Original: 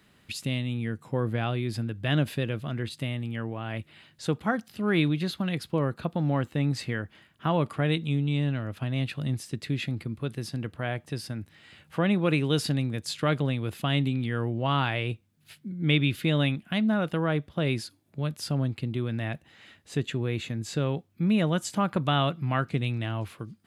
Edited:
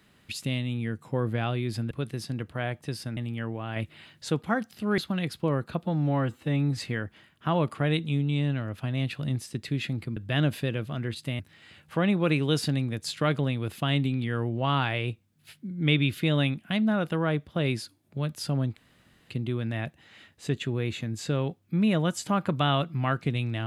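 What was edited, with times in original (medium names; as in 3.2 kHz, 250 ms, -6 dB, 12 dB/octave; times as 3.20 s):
1.91–3.14 s: swap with 10.15–11.41 s
3.73–4.26 s: gain +3 dB
4.95–5.28 s: delete
6.13–6.76 s: stretch 1.5×
18.78 s: insert room tone 0.54 s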